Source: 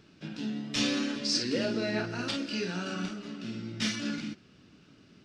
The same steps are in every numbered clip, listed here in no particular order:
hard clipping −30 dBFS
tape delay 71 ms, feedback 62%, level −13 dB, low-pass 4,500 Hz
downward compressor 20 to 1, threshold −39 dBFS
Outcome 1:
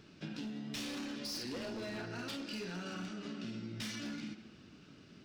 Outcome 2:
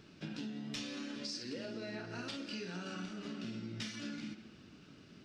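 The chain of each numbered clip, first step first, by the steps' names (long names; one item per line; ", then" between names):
hard clipping, then tape delay, then downward compressor
tape delay, then downward compressor, then hard clipping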